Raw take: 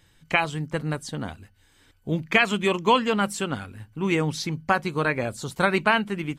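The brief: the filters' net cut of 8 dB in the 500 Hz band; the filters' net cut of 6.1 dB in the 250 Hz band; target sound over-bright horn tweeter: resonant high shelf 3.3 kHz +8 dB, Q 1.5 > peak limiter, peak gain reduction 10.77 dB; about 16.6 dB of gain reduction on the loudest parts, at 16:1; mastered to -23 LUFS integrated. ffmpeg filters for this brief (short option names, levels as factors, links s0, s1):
-af "equalizer=f=250:t=o:g=-7,equalizer=f=500:t=o:g=-8,acompressor=threshold=0.0224:ratio=16,highshelf=f=3300:t=q:w=1.5:g=8,volume=6.31,alimiter=limit=0.266:level=0:latency=1"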